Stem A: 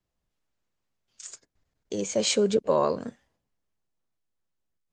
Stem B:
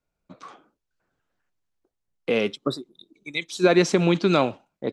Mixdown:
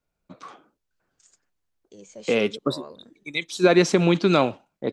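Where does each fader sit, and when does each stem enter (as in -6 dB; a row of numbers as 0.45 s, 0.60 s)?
-16.5 dB, +1.0 dB; 0.00 s, 0.00 s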